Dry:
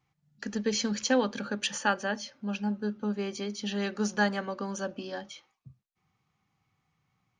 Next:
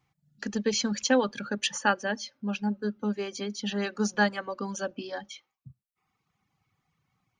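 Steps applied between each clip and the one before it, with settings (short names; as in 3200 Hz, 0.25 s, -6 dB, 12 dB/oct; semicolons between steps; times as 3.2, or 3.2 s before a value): reverb removal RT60 1 s; gain +2.5 dB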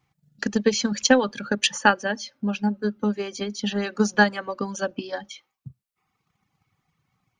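transient shaper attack +7 dB, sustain +2 dB; gain +2 dB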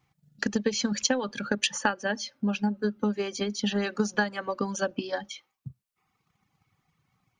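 compressor 6:1, threshold -22 dBFS, peak gain reduction 11.5 dB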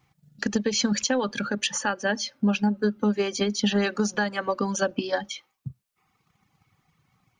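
limiter -18 dBFS, peak gain reduction 9.5 dB; gain +5 dB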